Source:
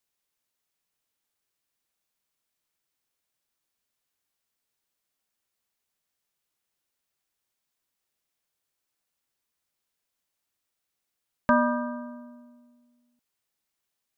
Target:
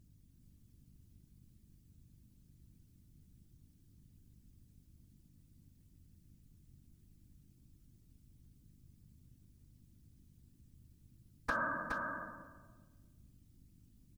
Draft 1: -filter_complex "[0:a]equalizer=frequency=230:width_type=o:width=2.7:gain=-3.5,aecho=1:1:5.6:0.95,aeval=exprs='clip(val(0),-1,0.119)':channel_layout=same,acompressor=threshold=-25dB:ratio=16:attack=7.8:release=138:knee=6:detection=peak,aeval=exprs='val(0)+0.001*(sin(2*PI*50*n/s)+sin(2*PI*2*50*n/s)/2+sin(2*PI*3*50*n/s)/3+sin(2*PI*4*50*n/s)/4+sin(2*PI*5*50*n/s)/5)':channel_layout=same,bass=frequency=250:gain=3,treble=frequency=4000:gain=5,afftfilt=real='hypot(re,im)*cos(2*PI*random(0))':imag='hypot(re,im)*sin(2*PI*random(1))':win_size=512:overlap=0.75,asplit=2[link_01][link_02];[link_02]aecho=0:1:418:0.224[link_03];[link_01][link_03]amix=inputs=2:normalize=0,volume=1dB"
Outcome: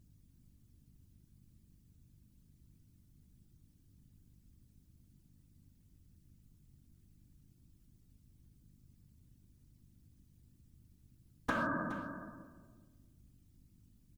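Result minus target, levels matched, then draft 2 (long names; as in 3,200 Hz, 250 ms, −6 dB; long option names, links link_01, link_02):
250 Hz band +7.5 dB; echo-to-direct −8.5 dB
-filter_complex "[0:a]equalizer=frequency=230:width_type=o:width=2.7:gain=-14.5,aecho=1:1:5.6:0.95,aeval=exprs='clip(val(0),-1,0.119)':channel_layout=same,acompressor=threshold=-25dB:ratio=16:attack=7.8:release=138:knee=6:detection=peak,aeval=exprs='val(0)+0.001*(sin(2*PI*50*n/s)+sin(2*PI*2*50*n/s)/2+sin(2*PI*3*50*n/s)/3+sin(2*PI*4*50*n/s)/4+sin(2*PI*5*50*n/s)/5)':channel_layout=same,bass=frequency=250:gain=3,treble=frequency=4000:gain=5,afftfilt=real='hypot(re,im)*cos(2*PI*random(0))':imag='hypot(re,im)*sin(2*PI*random(1))':win_size=512:overlap=0.75,asplit=2[link_01][link_02];[link_02]aecho=0:1:418:0.596[link_03];[link_01][link_03]amix=inputs=2:normalize=0,volume=1dB"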